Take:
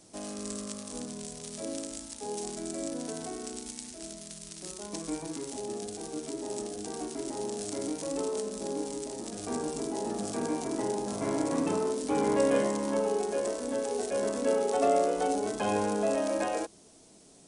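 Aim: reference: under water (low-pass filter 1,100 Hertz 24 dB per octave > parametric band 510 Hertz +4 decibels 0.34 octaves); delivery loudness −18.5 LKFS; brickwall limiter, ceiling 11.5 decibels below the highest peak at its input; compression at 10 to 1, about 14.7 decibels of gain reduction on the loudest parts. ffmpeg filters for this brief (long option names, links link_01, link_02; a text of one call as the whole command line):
ffmpeg -i in.wav -af "acompressor=threshold=-36dB:ratio=10,alimiter=level_in=8dB:limit=-24dB:level=0:latency=1,volume=-8dB,lowpass=frequency=1100:width=0.5412,lowpass=frequency=1100:width=1.3066,equalizer=frequency=510:width_type=o:width=0.34:gain=4,volume=24dB" out.wav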